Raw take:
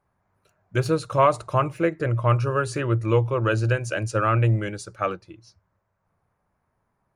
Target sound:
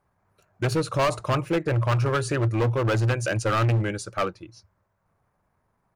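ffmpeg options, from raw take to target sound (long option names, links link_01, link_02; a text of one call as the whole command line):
ffmpeg -i in.wav -af "atempo=1.2,asoftclip=type=hard:threshold=-21dB,volume=2dB" out.wav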